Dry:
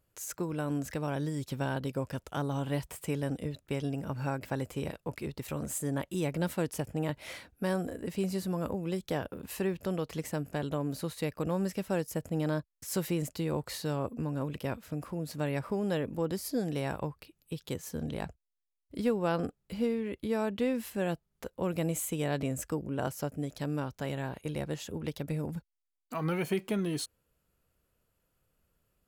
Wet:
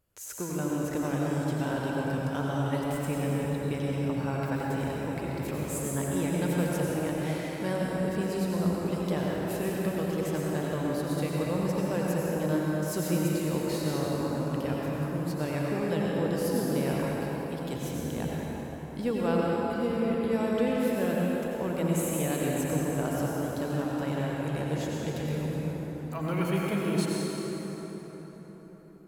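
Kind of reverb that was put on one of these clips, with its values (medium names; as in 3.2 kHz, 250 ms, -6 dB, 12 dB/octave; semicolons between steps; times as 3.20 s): plate-style reverb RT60 4.9 s, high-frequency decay 0.55×, pre-delay 75 ms, DRR -4.5 dB; trim -1.5 dB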